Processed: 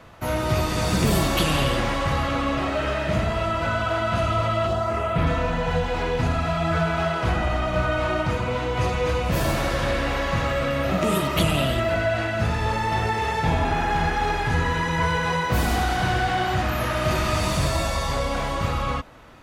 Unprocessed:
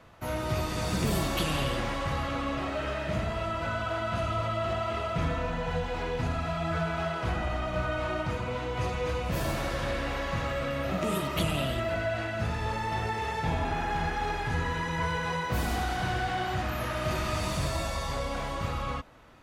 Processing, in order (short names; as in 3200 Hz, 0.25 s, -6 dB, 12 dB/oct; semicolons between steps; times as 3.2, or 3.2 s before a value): 4.66–5.26 bell 1800 Hz -> 7200 Hz -12 dB 0.84 oct; gain +7.5 dB